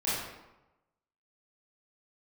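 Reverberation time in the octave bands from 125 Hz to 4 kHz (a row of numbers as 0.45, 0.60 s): 1.1, 0.95, 1.0, 1.0, 0.80, 0.65 s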